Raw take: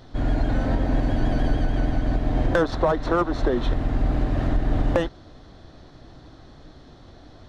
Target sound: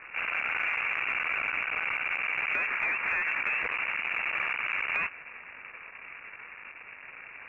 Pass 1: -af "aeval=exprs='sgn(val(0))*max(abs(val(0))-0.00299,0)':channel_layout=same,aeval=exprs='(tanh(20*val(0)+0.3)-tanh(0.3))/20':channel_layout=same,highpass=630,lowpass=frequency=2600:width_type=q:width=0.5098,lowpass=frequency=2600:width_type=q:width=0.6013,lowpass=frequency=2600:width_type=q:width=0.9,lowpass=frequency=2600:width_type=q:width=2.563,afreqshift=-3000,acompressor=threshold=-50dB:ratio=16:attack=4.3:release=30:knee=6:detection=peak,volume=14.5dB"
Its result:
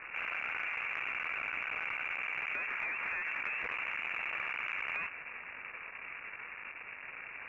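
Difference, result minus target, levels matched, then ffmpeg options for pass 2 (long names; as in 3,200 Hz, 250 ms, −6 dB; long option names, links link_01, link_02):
downward compressor: peak gain reduction +8 dB
-af "aeval=exprs='sgn(val(0))*max(abs(val(0))-0.00299,0)':channel_layout=same,aeval=exprs='(tanh(20*val(0)+0.3)-tanh(0.3))/20':channel_layout=same,highpass=630,lowpass=frequency=2600:width_type=q:width=0.5098,lowpass=frequency=2600:width_type=q:width=0.6013,lowpass=frequency=2600:width_type=q:width=0.9,lowpass=frequency=2600:width_type=q:width=2.563,afreqshift=-3000,acompressor=threshold=-41.5dB:ratio=16:attack=4.3:release=30:knee=6:detection=peak,volume=14.5dB"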